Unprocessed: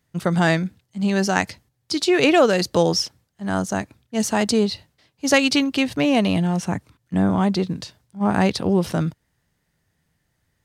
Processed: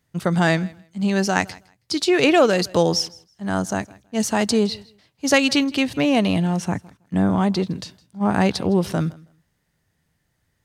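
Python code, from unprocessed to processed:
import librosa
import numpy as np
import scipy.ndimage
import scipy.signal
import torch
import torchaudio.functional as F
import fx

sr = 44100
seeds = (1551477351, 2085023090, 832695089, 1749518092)

y = fx.echo_feedback(x, sr, ms=161, feedback_pct=18, wet_db=-23)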